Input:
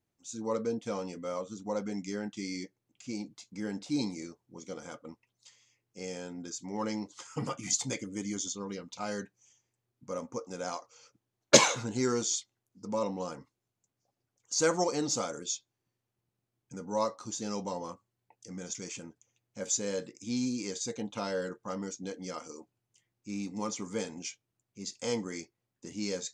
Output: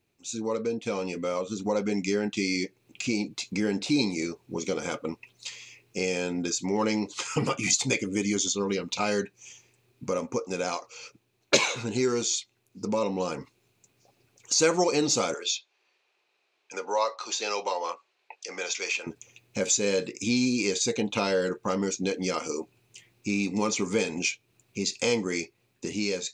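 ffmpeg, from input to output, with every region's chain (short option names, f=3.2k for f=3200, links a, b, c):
-filter_complex "[0:a]asettb=1/sr,asplit=3[a][b][c];[a]atrim=end=15.344[d];[b]atrim=start=15.34:end=19.07,asetpts=PTS-STARTPTS,afade=t=in:d=0.004:c=qsin,afade=t=out:st=3.726:d=0.004:c=qsin,highpass=360,acrossover=split=480 6100:gain=0.112 1 0.0708[e][f][g];[e][f][g]amix=inputs=3:normalize=0[h];[c]atrim=start=19.066[i];[d][h]acrossfade=d=0.004:c1=hsin:c2=qsin[j];[j][i]acrossfade=d=0.004:c1=qsin:c2=hsin,dynaudnorm=f=620:g=5:m=9.5dB,equalizer=f=400:t=o:w=0.33:g=7,equalizer=f=2.5k:t=o:w=0.33:g=12,equalizer=f=4k:t=o:w=0.33:g=6,acompressor=threshold=-38dB:ratio=2,volume=7dB"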